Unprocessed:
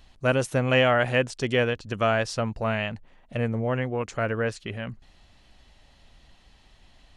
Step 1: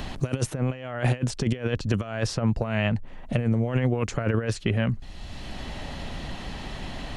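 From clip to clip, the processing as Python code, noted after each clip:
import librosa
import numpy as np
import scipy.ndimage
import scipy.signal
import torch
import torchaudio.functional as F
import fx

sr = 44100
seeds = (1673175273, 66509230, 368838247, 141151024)

y = fx.over_compress(x, sr, threshold_db=-29.0, ratio=-0.5)
y = fx.low_shelf(y, sr, hz=360.0, db=7.5)
y = fx.band_squash(y, sr, depth_pct=70)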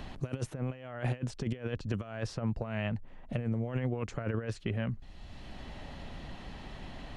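y = fx.high_shelf(x, sr, hz=4300.0, db=-7.0)
y = y * 10.0 ** (-9.0 / 20.0)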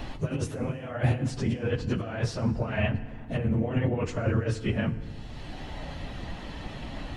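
y = fx.phase_scramble(x, sr, seeds[0], window_ms=50)
y = fx.rev_fdn(y, sr, rt60_s=1.9, lf_ratio=1.3, hf_ratio=0.65, size_ms=20.0, drr_db=12.5)
y = y * 10.0 ** (6.5 / 20.0)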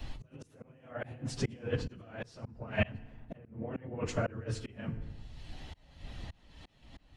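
y = fx.auto_swell(x, sr, attack_ms=380.0)
y = fx.band_widen(y, sr, depth_pct=100)
y = y * 10.0 ** (-4.5 / 20.0)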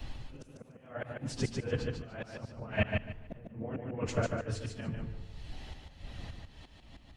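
y = fx.echo_feedback(x, sr, ms=147, feedback_pct=22, wet_db=-4)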